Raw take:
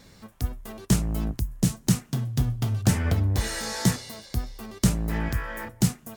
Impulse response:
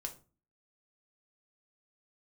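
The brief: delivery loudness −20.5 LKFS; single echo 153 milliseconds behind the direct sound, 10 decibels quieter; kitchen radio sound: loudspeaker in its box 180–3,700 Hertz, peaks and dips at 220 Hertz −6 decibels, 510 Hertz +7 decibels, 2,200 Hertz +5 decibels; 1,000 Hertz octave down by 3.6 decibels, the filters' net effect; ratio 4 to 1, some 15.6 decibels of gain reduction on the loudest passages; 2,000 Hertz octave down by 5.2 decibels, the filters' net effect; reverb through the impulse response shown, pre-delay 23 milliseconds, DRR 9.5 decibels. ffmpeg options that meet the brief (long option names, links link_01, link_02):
-filter_complex "[0:a]equalizer=frequency=1000:width_type=o:gain=-3.5,equalizer=frequency=2000:width_type=o:gain=-7.5,acompressor=threshold=-35dB:ratio=4,aecho=1:1:153:0.316,asplit=2[link_01][link_02];[1:a]atrim=start_sample=2205,adelay=23[link_03];[link_02][link_03]afir=irnorm=-1:irlink=0,volume=-7.5dB[link_04];[link_01][link_04]amix=inputs=2:normalize=0,highpass=180,equalizer=frequency=220:width_type=q:width=4:gain=-6,equalizer=frequency=510:width_type=q:width=4:gain=7,equalizer=frequency=2200:width_type=q:width=4:gain=5,lowpass=frequency=3700:width=0.5412,lowpass=frequency=3700:width=1.3066,volume=23dB"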